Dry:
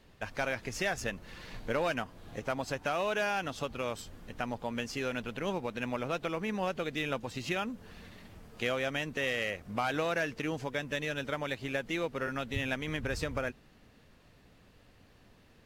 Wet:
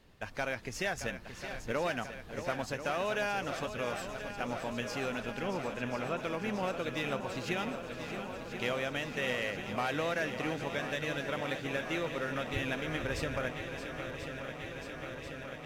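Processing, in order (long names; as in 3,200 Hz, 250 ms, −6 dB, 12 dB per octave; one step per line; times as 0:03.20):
0:05.42–0:06.20: Savitzky-Golay smoothing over 25 samples
feedback echo with a long and a short gap by turns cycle 1,038 ms, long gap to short 1.5 to 1, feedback 78%, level −10 dB
level −2 dB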